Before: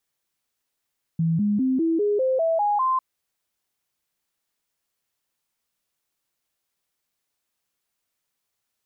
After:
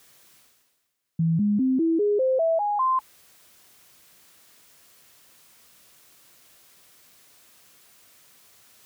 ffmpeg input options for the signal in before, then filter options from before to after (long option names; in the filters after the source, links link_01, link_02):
-f lavfi -i "aevalsrc='0.119*clip(min(mod(t,0.2),0.2-mod(t,0.2))/0.005,0,1)*sin(2*PI*164*pow(2,floor(t/0.2)/3)*mod(t,0.2))':duration=1.8:sample_rate=44100"
-af "highpass=60,bandreject=frequency=860:width=12,areverse,acompressor=mode=upward:threshold=-35dB:ratio=2.5,areverse"